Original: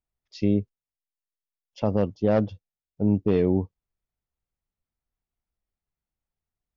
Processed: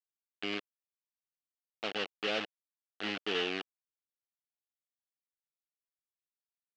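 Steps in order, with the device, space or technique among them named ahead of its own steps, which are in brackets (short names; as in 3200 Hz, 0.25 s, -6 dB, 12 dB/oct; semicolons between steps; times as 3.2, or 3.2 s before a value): hand-held game console (bit-crush 4-bit; speaker cabinet 500–4500 Hz, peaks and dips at 570 Hz -8 dB, 970 Hz -10 dB, 2900 Hz +9 dB); gain -7 dB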